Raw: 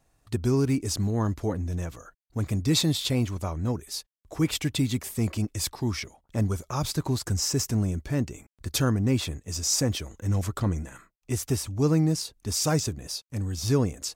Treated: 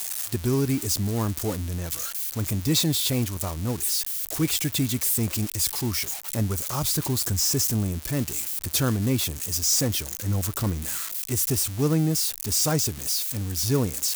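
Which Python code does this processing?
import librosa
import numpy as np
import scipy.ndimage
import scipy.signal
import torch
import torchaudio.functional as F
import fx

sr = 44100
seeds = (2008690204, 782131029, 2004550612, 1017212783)

y = x + 0.5 * 10.0 ** (-20.5 / 20.0) * np.diff(np.sign(x), prepend=np.sign(x[:1]))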